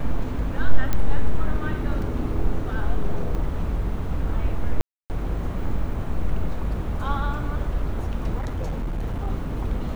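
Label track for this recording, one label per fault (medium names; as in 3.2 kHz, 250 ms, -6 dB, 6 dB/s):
0.930000	0.930000	pop -9 dBFS
2.020000	2.020000	dropout 2.8 ms
3.350000	3.350000	dropout 2.1 ms
4.810000	5.100000	dropout 289 ms
8.380000	9.280000	clipped -23 dBFS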